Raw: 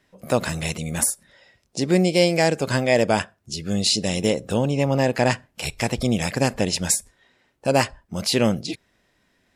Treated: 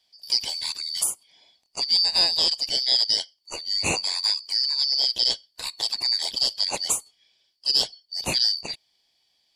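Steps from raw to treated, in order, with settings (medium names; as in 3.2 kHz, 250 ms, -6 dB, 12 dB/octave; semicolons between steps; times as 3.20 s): four frequency bands reordered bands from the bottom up 4321; peaking EQ 1.4 kHz -10.5 dB 0.53 oct; trim -3 dB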